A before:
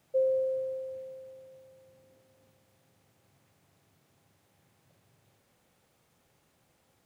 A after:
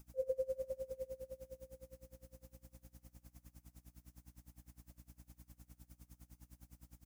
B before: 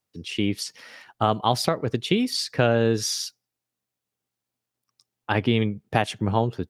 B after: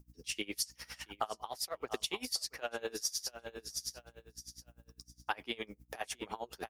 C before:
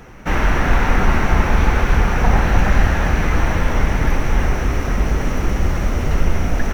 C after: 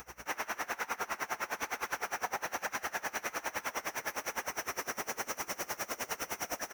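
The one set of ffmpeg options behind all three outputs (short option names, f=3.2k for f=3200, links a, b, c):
-filter_complex "[0:a]highpass=580,asplit=2[a][b];[b]alimiter=limit=-15.5dB:level=0:latency=1:release=160,volume=-2dB[c];[a][c]amix=inputs=2:normalize=0,flanger=delay=0.8:depth=8.5:regen=-57:speed=1.1:shape=sinusoidal,asplit=2[d][e];[e]aecho=0:1:676|1352|2028:0.2|0.0499|0.0125[f];[d][f]amix=inputs=2:normalize=0,aexciter=amount=3.1:drive=5.2:freq=5.1k,aeval=exprs='val(0)+0.00224*(sin(2*PI*60*n/s)+sin(2*PI*2*60*n/s)/2+sin(2*PI*3*60*n/s)/3+sin(2*PI*4*60*n/s)/4+sin(2*PI*5*60*n/s)/5)':c=same,acompressor=threshold=-30dB:ratio=5,aeval=exprs='val(0)*pow(10,-24*(0.5-0.5*cos(2*PI*9.8*n/s))/20)':c=same"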